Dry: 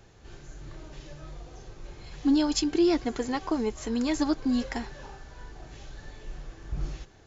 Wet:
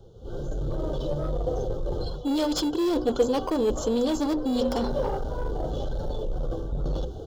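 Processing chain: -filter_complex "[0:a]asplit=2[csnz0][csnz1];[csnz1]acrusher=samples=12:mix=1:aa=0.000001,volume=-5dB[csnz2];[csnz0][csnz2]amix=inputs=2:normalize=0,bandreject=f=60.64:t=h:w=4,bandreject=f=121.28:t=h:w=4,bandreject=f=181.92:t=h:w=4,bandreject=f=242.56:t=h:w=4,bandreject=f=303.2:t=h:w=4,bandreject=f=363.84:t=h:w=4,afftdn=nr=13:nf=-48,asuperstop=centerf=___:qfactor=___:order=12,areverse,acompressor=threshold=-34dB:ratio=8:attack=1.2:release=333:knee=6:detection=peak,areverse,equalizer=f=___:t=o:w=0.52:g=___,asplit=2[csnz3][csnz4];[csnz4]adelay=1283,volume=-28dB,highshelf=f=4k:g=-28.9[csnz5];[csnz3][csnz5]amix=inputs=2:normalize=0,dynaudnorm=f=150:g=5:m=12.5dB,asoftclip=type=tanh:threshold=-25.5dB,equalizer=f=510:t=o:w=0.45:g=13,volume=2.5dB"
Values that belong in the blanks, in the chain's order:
2100, 1.5, 3.4k, 8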